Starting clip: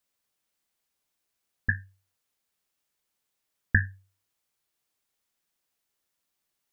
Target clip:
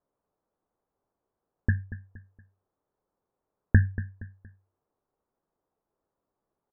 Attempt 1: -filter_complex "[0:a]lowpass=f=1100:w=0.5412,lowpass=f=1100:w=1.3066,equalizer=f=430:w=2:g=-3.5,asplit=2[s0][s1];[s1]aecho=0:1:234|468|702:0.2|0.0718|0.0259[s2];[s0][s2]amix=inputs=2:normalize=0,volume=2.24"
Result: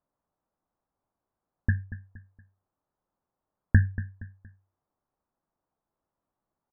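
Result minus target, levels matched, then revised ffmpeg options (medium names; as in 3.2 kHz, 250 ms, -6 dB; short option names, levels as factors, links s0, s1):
500 Hz band -6.0 dB
-filter_complex "[0:a]lowpass=f=1100:w=0.5412,lowpass=f=1100:w=1.3066,equalizer=f=430:w=2:g=4.5,asplit=2[s0][s1];[s1]aecho=0:1:234|468|702:0.2|0.0718|0.0259[s2];[s0][s2]amix=inputs=2:normalize=0,volume=2.24"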